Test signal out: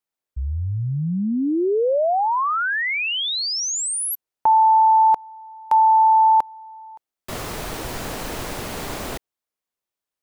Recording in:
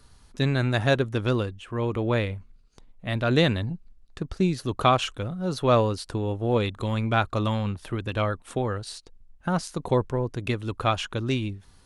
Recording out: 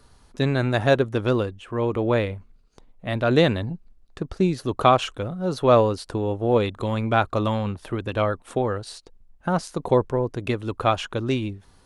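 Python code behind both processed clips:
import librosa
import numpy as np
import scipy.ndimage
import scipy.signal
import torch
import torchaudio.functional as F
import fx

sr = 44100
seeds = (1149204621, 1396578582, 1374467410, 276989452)

y = fx.peak_eq(x, sr, hz=560.0, db=6.0, octaves=2.6)
y = F.gain(torch.from_numpy(y), -1.0).numpy()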